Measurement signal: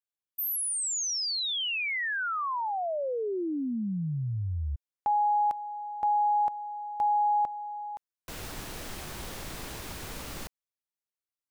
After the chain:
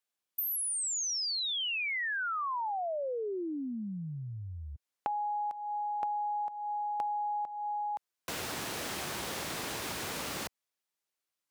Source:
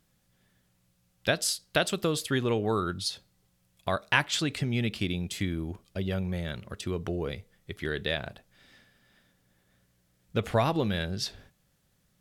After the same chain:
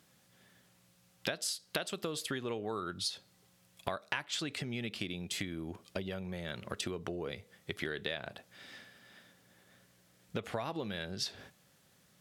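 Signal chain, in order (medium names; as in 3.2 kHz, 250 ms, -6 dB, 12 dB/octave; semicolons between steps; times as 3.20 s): high-pass 85 Hz; treble shelf 12 kHz -5 dB; compression 12:1, threshold -39 dBFS; bass shelf 180 Hz -9 dB; trim +7 dB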